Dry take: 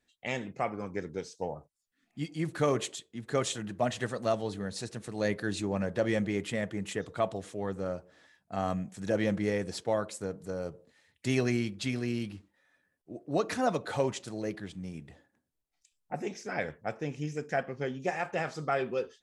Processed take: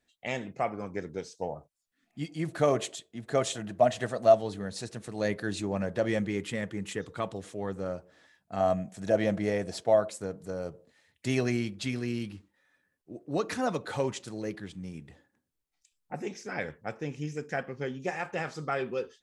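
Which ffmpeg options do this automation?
-af "asetnsamples=n=441:p=0,asendcmd='2.47 equalizer g 11.5;4.38 equalizer g 2.5;6.21 equalizer g -7.5;7.44 equalizer g 0.5;8.6 equalizer g 11.5;10.11 equalizer g 2.5;11.86 equalizer g -5',equalizer=f=660:t=o:w=0.31:g=4"

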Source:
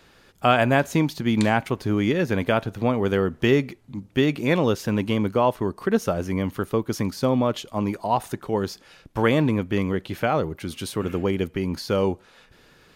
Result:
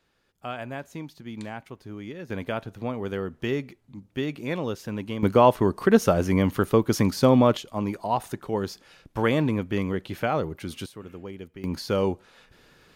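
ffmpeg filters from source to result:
-af "asetnsamples=n=441:p=0,asendcmd='2.3 volume volume -8.5dB;5.23 volume volume 3.5dB;7.57 volume volume -3dB;10.86 volume volume -15dB;11.64 volume volume -2dB',volume=0.158"

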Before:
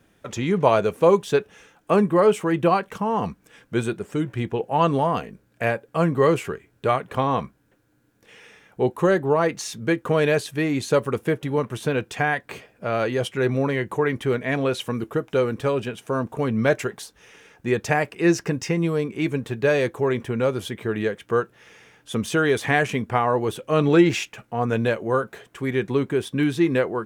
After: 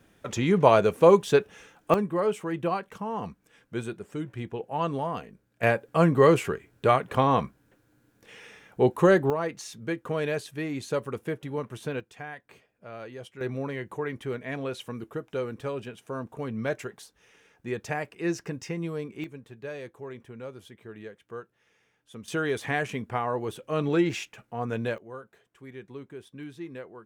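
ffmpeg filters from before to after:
-af "asetnsamples=n=441:p=0,asendcmd='1.94 volume volume -9dB;5.63 volume volume 0dB;9.3 volume volume -9dB;12 volume volume -17.5dB;13.41 volume volume -10dB;19.24 volume volume -18dB;22.28 volume volume -8dB;24.98 volume volume -19.5dB',volume=0.944"

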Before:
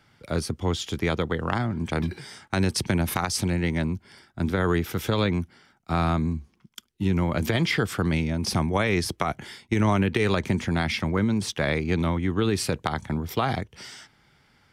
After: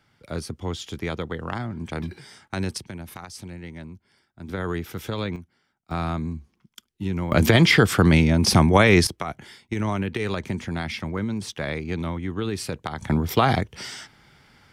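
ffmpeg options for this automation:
-af "asetnsamples=n=441:p=0,asendcmd='2.78 volume volume -13dB;4.49 volume volume -5dB;5.36 volume volume -13dB;5.91 volume volume -3.5dB;7.32 volume volume 8dB;9.07 volume volume -4dB;13.01 volume volume 6dB',volume=0.631"

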